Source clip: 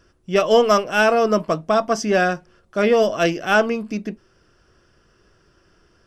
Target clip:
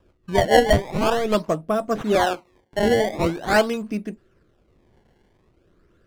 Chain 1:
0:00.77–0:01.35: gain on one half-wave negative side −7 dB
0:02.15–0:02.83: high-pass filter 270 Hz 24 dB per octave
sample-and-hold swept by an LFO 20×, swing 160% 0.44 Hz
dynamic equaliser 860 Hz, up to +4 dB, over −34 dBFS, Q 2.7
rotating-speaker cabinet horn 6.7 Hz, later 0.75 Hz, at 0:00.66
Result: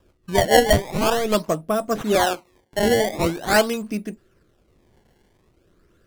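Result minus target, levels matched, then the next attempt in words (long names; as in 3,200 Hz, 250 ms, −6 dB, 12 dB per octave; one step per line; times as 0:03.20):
4,000 Hz band +2.5 dB
0:00.77–0:01.35: gain on one half-wave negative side −7 dB
0:02.15–0:02.83: high-pass filter 270 Hz 24 dB per octave
sample-and-hold swept by an LFO 20×, swing 160% 0.44 Hz
dynamic equaliser 860 Hz, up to +4 dB, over −34 dBFS, Q 2.7
low-pass filter 3,400 Hz 6 dB per octave
rotating-speaker cabinet horn 6.7 Hz, later 0.75 Hz, at 0:00.66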